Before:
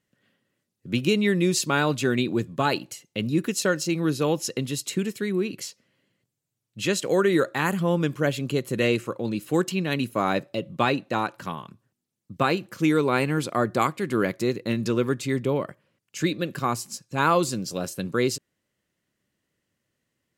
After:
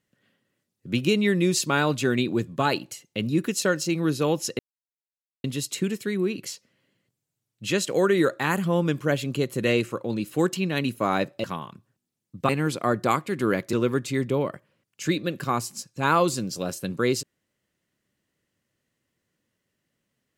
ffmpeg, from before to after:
ffmpeg -i in.wav -filter_complex "[0:a]asplit=5[link_01][link_02][link_03][link_04][link_05];[link_01]atrim=end=4.59,asetpts=PTS-STARTPTS,afade=type=out:start_time=4.586:duration=0.004:curve=hsin,apad=pad_dur=0.85[link_06];[link_02]atrim=start=4.59:end=10.592,asetpts=PTS-STARTPTS,afade=type=in:duration=0.004:curve=hsin[link_07];[link_03]atrim=start=11.398:end=12.452[link_08];[link_04]atrim=start=13.198:end=14.442[link_09];[link_05]atrim=start=14.878[link_10];[link_06][link_07]concat=n=2:v=0:a=1[link_11];[link_11][link_08]acrossfade=duration=0.004:curve1=hsin:curve2=hsin[link_12];[link_12][link_09]acrossfade=duration=0.004:curve1=hsin:curve2=hsin[link_13];[link_13][link_10]acrossfade=duration=0.004:curve1=hsin:curve2=hsin" out.wav

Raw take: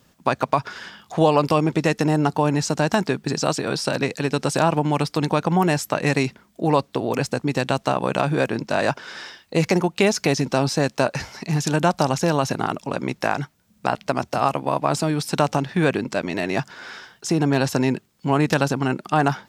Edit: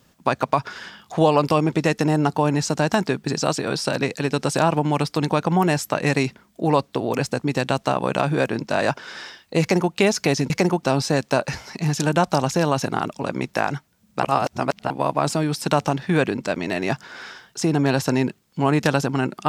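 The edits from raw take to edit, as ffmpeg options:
ffmpeg -i in.wav -filter_complex "[0:a]asplit=5[link_01][link_02][link_03][link_04][link_05];[link_01]atrim=end=10.502[link_06];[link_02]atrim=start=9.608:end=9.942[link_07];[link_03]atrim=start=10.498:end=13.902[link_08];[link_04]atrim=start=13.898:end=14.572,asetpts=PTS-STARTPTS,areverse[link_09];[link_05]atrim=start=14.568[link_10];[link_06][link_07]acrossfade=duration=0.004:curve1=hsin:curve2=hsin[link_11];[link_11][link_08]acrossfade=duration=0.004:curve1=hsin:curve2=hsin[link_12];[link_12][link_09]acrossfade=duration=0.004:curve1=hsin:curve2=hsin[link_13];[link_13][link_10]acrossfade=duration=0.004:curve1=hsin:curve2=hsin" out.wav

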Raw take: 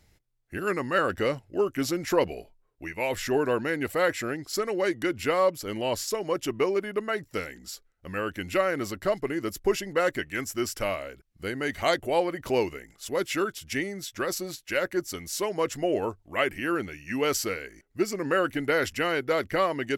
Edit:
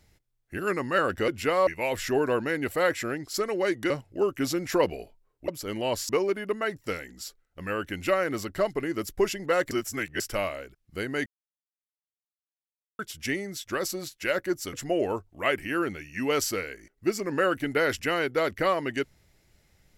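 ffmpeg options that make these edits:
ffmpeg -i in.wav -filter_complex "[0:a]asplit=11[link_01][link_02][link_03][link_04][link_05][link_06][link_07][link_08][link_09][link_10][link_11];[link_01]atrim=end=1.282[link_12];[link_02]atrim=start=5.088:end=5.482[link_13];[link_03]atrim=start=2.858:end=5.092[link_14];[link_04]atrim=start=1.278:end=2.862[link_15];[link_05]atrim=start=5.478:end=6.092[link_16];[link_06]atrim=start=6.558:end=10.182[link_17];[link_07]atrim=start=10.178:end=10.672,asetpts=PTS-STARTPTS,areverse[link_18];[link_08]atrim=start=10.668:end=11.73,asetpts=PTS-STARTPTS,afade=type=out:start_time=1.058:duration=0.004:curve=hsin[link_19];[link_09]atrim=start=11.73:end=13.46,asetpts=PTS-STARTPTS,volume=0[link_20];[link_10]atrim=start=13.46:end=15.202,asetpts=PTS-STARTPTS,afade=type=in:duration=0.004:curve=hsin[link_21];[link_11]atrim=start=15.658[link_22];[link_12][link_13]acrossfade=duration=0.004:curve1=hsin:curve2=hsin[link_23];[link_23][link_14]acrossfade=duration=0.004:curve1=hsin:curve2=hsin[link_24];[link_24][link_15]acrossfade=duration=0.004:curve1=hsin:curve2=hsin[link_25];[link_25][link_16]acrossfade=duration=0.004:curve1=hsin:curve2=hsin[link_26];[link_26][link_17]acrossfade=duration=0.004:curve1=hsin:curve2=hsin[link_27];[link_27][link_18]acrossfade=duration=0.004:curve1=hsin:curve2=hsin[link_28];[link_19][link_20][link_21]concat=n=3:v=0:a=1[link_29];[link_28][link_29]acrossfade=duration=0.004:curve1=hsin:curve2=hsin[link_30];[link_30][link_22]acrossfade=duration=0.004:curve1=hsin:curve2=hsin" out.wav

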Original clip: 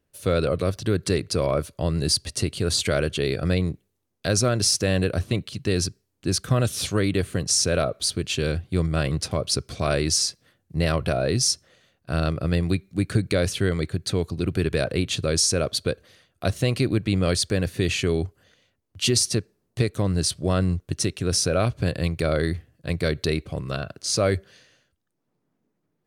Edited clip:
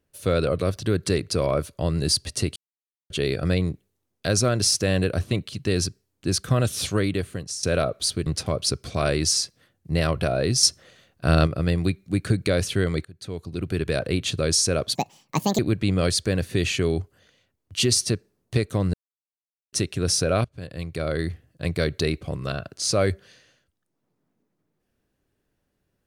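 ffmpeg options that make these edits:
ffmpeg -i in.wav -filter_complex "[0:a]asplit=13[link_01][link_02][link_03][link_04][link_05][link_06][link_07][link_08][link_09][link_10][link_11][link_12][link_13];[link_01]atrim=end=2.56,asetpts=PTS-STARTPTS,afade=type=out:start_time=2.556:duration=0.004:curve=hsin[link_14];[link_02]atrim=start=2.56:end=3.1,asetpts=PTS-STARTPTS,volume=0[link_15];[link_03]atrim=start=3.1:end=7.63,asetpts=PTS-STARTPTS,afade=type=in:duration=0.004:curve=hsin,afade=type=out:start_time=3.86:duration=0.67:silence=0.16788[link_16];[link_04]atrim=start=7.63:end=8.262,asetpts=PTS-STARTPTS,afade=type=in:duration=0.004:curve=hsin:silence=0.16788[link_17];[link_05]atrim=start=9.108:end=11.482[link_18];[link_06]atrim=start=11.478:end=12.322,asetpts=PTS-STARTPTS,volume=5.5dB[link_19];[link_07]atrim=start=12.318:end=13.9,asetpts=PTS-STARTPTS,afade=type=out:start_time=1.578:duration=0.004:curve=hsin:silence=0.0630957[link_20];[link_08]atrim=start=13.9:end=15.804,asetpts=PTS-STARTPTS,afade=type=in:duration=1.34:curve=qsin:silence=0.0630957[link_21];[link_09]atrim=start=15.8:end=16.83,asetpts=PTS-STARTPTS,asetrate=71442,aresample=44100[link_22];[link_10]atrim=start=16.826:end=20.18,asetpts=PTS-STARTPTS,afade=type=out:start_time=3.35:duration=0.004:curve=hsin[link_23];[link_11]atrim=start=20.18:end=20.97,asetpts=PTS-STARTPTS,volume=0[link_24];[link_12]atrim=start=20.97:end=21.69,asetpts=PTS-STARTPTS,afade=type=in:duration=0.004:curve=hsin,afade=type=out:start_time=0.716:duration=0.004:curve=hsin:silence=0.0794328[link_25];[link_13]atrim=start=21.69,asetpts=PTS-STARTPTS,afade=type=in:duration=1.03:silence=0.0794328[link_26];[link_14][link_15][link_16][link_17]concat=n=4:v=0:a=1[link_27];[link_27][link_18]acrossfade=duration=0.004:curve1=hsin:curve2=hsin[link_28];[link_28][link_19]acrossfade=duration=0.004:curve1=hsin:curve2=hsin[link_29];[link_20][link_21]concat=n=2:v=0:a=1[link_30];[link_29][link_30]acrossfade=duration=0.004:curve1=hsin:curve2=hsin[link_31];[link_31][link_22]acrossfade=duration=0.004:curve1=hsin:curve2=hsin[link_32];[link_23][link_24][link_25][link_26]concat=n=4:v=0:a=1[link_33];[link_32][link_33]acrossfade=duration=0.004:curve1=hsin:curve2=hsin" out.wav

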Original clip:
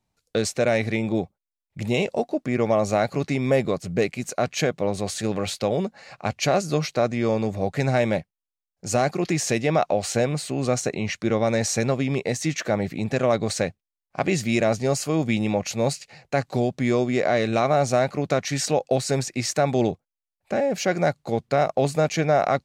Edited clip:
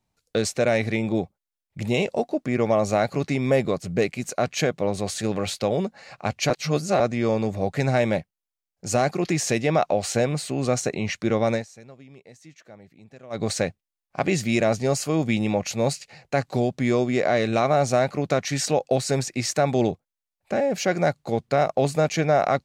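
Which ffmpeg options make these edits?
ffmpeg -i in.wav -filter_complex "[0:a]asplit=5[link_01][link_02][link_03][link_04][link_05];[link_01]atrim=end=6.502[link_06];[link_02]atrim=start=6.498:end=7.002,asetpts=PTS-STARTPTS,areverse[link_07];[link_03]atrim=start=6.998:end=11.65,asetpts=PTS-STARTPTS,afade=type=out:start_time=4.532:duration=0.12:silence=0.0707946[link_08];[link_04]atrim=start=11.65:end=13.3,asetpts=PTS-STARTPTS,volume=-23dB[link_09];[link_05]atrim=start=13.3,asetpts=PTS-STARTPTS,afade=type=in:duration=0.12:silence=0.0707946[link_10];[link_06][link_07]acrossfade=duration=0.004:curve1=hsin:curve2=hsin[link_11];[link_08][link_09][link_10]concat=n=3:v=0:a=1[link_12];[link_11][link_12]acrossfade=duration=0.004:curve1=hsin:curve2=hsin" out.wav

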